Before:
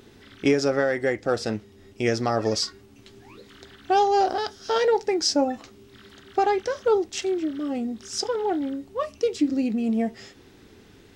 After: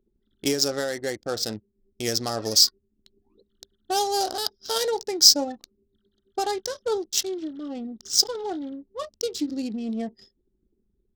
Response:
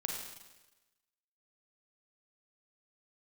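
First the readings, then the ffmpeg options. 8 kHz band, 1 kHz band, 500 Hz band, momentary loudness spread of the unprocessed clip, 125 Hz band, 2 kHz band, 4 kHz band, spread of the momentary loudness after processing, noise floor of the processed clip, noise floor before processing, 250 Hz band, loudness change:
+10.5 dB, -5.5 dB, -5.5 dB, 9 LU, -6.0 dB, -6.0 dB, +9.0 dB, 17 LU, -73 dBFS, -52 dBFS, -5.5 dB, +1.0 dB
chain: -af "adynamicsmooth=sensitivity=6.5:basefreq=2.6k,aexciter=amount=8.9:drive=2.1:freq=3.5k,anlmdn=1.58,volume=-5.5dB"

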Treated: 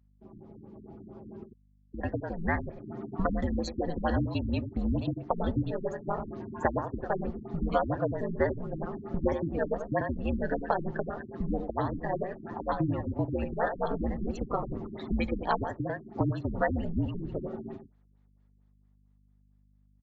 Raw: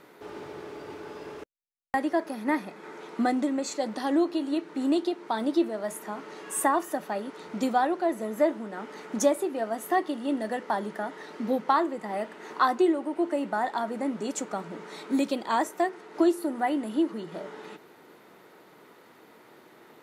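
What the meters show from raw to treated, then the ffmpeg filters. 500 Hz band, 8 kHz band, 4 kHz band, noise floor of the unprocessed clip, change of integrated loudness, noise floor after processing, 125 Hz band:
-3.0 dB, under -20 dB, -8.5 dB, -55 dBFS, -4.0 dB, -64 dBFS, +16.5 dB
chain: -filter_complex "[0:a]agate=range=-11dB:threshold=-49dB:ratio=16:detection=peak,aeval=exprs='val(0)*sin(2*PI*83*n/s)':c=same,afftdn=nr=21:nf=-41,acrossover=split=110|1000|2900[a][b][c][d];[a]acompressor=threshold=-52dB:ratio=4[e];[b]acompressor=threshold=-39dB:ratio=4[f];[c]acompressor=threshold=-38dB:ratio=4[g];[d]acompressor=threshold=-55dB:ratio=4[h];[e][f][g][h]amix=inputs=4:normalize=0,asplit=2[i][j];[j]adelay=93.29,volume=-8dB,highshelf=f=4k:g=-2.1[k];[i][k]amix=inputs=2:normalize=0,dynaudnorm=f=120:g=31:m=14dB,afreqshift=-130,adynamicequalizer=threshold=0.00178:dfrequency=5000:dqfactor=2.2:tfrequency=5000:tqfactor=2.2:attack=5:release=100:ratio=0.375:range=1.5:mode=boostabove:tftype=bell,aeval=exprs='val(0)+0.00126*(sin(2*PI*50*n/s)+sin(2*PI*2*50*n/s)/2+sin(2*PI*3*50*n/s)/3+sin(2*PI*4*50*n/s)/4+sin(2*PI*5*50*n/s)/5)':c=same,afftfilt=real='re*lt(b*sr/1024,330*pow(7900/330,0.5+0.5*sin(2*PI*4.4*pts/sr)))':imag='im*lt(b*sr/1024,330*pow(7900/330,0.5+0.5*sin(2*PI*4.4*pts/sr)))':win_size=1024:overlap=0.75,volume=-4.5dB"

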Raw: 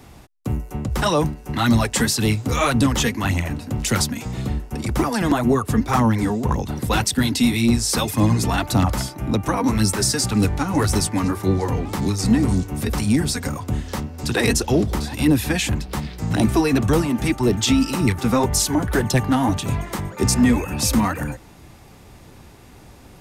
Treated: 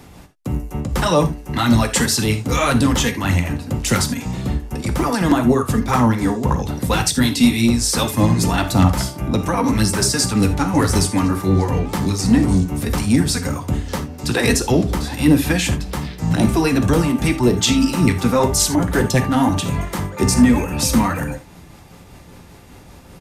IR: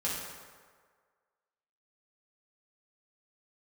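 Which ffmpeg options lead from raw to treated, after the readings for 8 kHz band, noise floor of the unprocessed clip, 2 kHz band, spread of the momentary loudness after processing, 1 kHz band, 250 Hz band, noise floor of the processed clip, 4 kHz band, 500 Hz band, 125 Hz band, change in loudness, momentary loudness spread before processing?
+2.5 dB, -45 dBFS, +2.5 dB, 9 LU, +2.5 dB, +3.0 dB, -43 dBFS, +2.5 dB, +2.5 dB, +2.5 dB, +2.5 dB, 8 LU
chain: -filter_complex "[0:a]tremolo=f=5.1:d=0.32,asplit=2[a][b];[1:a]atrim=start_sample=2205,atrim=end_sample=3969[c];[b][c]afir=irnorm=-1:irlink=0,volume=-7.5dB[d];[a][d]amix=inputs=2:normalize=0,aresample=32000,aresample=44100,volume=1dB"

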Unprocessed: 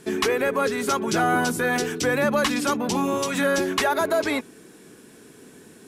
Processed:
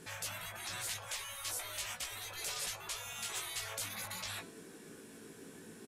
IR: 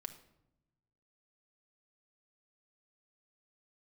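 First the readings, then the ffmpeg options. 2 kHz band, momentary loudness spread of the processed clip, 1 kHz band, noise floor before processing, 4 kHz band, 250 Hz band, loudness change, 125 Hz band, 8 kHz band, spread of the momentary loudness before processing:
-18.5 dB, 14 LU, -23.0 dB, -49 dBFS, -10.0 dB, -30.5 dB, -17.0 dB, -18.5 dB, -7.5 dB, 3 LU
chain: -filter_complex "[0:a]afftfilt=real='re*lt(hypot(re,im),0.0562)':imag='im*lt(hypot(re,im),0.0562)':win_size=1024:overlap=0.75,asplit=2[a][b];[b]adelay=18,volume=-4dB[c];[a][c]amix=inputs=2:normalize=0,bandreject=f=333.1:t=h:w=4,bandreject=f=666.2:t=h:w=4,bandreject=f=999.3:t=h:w=4,bandreject=f=1.3324k:t=h:w=4,bandreject=f=1.6655k:t=h:w=4,bandreject=f=1.9986k:t=h:w=4,bandreject=f=2.3317k:t=h:w=4,bandreject=f=2.6648k:t=h:w=4,bandreject=f=2.9979k:t=h:w=4,bandreject=f=3.331k:t=h:w=4,bandreject=f=3.6641k:t=h:w=4,bandreject=f=3.9972k:t=h:w=4,bandreject=f=4.3303k:t=h:w=4,bandreject=f=4.6634k:t=h:w=4,bandreject=f=4.9965k:t=h:w=4,bandreject=f=5.3296k:t=h:w=4,bandreject=f=5.6627k:t=h:w=4,bandreject=f=5.9958k:t=h:w=4,bandreject=f=6.3289k:t=h:w=4,bandreject=f=6.662k:t=h:w=4,bandreject=f=6.9951k:t=h:w=4,bandreject=f=7.3282k:t=h:w=4,bandreject=f=7.6613k:t=h:w=4,bandreject=f=7.9944k:t=h:w=4,bandreject=f=8.3275k:t=h:w=4,bandreject=f=8.6606k:t=h:w=4,bandreject=f=8.9937k:t=h:w=4,bandreject=f=9.3268k:t=h:w=4,bandreject=f=9.6599k:t=h:w=4,bandreject=f=9.993k:t=h:w=4,bandreject=f=10.3261k:t=h:w=4,bandreject=f=10.6592k:t=h:w=4,bandreject=f=10.9923k:t=h:w=4,bandreject=f=11.3254k:t=h:w=4,bandreject=f=11.6585k:t=h:w=4,bandreject=f=11.9916k:t=h:w=4,bandreject=f=12.3247k:t=h:w=4,bandreject=f=12.6578k:t=h:w=4,bandreject=f=12.9909k:t=h:w=4,bandreject=f=13.324k:t=h:w=4,volume=-6dB"

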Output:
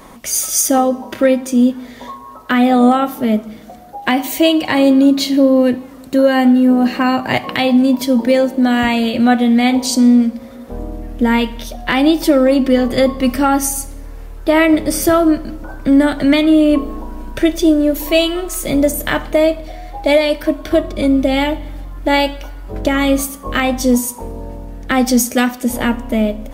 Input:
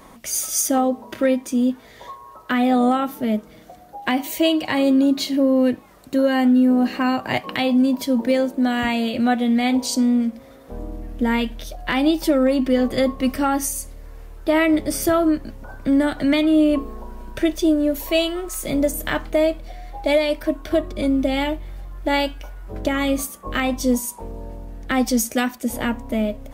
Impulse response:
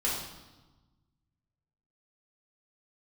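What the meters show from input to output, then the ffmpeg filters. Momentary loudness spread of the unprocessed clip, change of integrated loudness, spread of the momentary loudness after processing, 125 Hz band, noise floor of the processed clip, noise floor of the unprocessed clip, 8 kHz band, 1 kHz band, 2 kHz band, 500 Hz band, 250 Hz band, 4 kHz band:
14 LU, +6.0 dB, 16 LU, +6.0 dB, -35 dBFS, -45 dBFS, +6.0 dB, +6.5 dB, +6.0 dB, +6.0 dB, +6.0 dB, +6.0 dB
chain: -filter_complex "[0:a]asplit=2[a][b];[1:a]atrim=start_sample=2205[c];[b][c]afir=irnorm=-1:irlink=0,volume=-22dB[d];[a][d]amix=inputs=2:normalize=0,volume=5.5dB"

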